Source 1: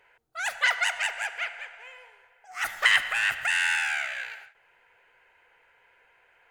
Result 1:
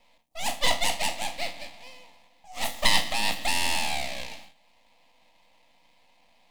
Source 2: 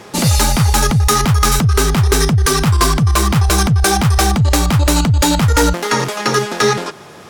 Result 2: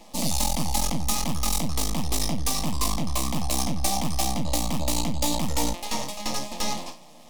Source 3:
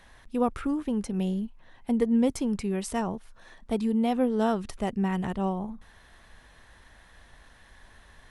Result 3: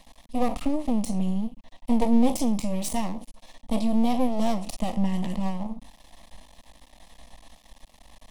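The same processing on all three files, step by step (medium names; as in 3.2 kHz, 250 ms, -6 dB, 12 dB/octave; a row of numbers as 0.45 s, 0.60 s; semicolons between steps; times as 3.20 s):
spectral sustain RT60 0.30 s; half-wave rectifier; static phaser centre 400 Hz, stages 6; normalise loudness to -27 LUFS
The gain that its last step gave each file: +6.5 dB, -6.5 dB, +8.5 dB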